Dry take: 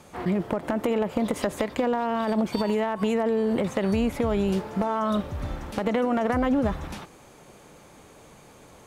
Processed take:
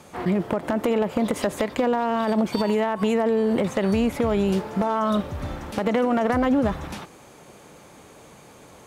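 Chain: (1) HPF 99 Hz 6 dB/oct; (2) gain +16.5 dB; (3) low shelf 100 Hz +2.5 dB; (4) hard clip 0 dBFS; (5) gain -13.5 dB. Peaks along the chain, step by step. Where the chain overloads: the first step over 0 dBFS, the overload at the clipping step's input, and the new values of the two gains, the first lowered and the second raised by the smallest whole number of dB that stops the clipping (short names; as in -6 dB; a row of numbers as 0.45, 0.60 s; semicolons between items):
-11.5, +5.0, +4.5, 0.0, -13.5 dBFS; step 2, 4.5 dB; step 2 +11.5 dB, step 5 -8.5 dB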